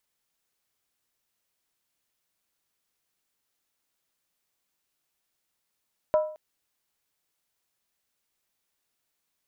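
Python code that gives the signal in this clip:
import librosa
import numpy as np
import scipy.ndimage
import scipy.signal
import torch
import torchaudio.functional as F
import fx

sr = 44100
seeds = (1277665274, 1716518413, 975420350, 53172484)

y = fx.strike_skin(sr, length_s=0.22, level_db=-16.0, hz=617.0, decay_s=0.48, tilt_db=10.0, modes=5)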